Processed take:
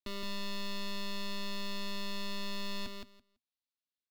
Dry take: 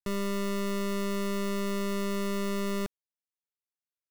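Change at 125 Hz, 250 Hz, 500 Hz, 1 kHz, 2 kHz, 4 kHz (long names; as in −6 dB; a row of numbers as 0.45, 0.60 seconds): can't be measured, −12.0 dB, −14.5 dB, −7.0 dB, −4.0 dB, +2.0 dB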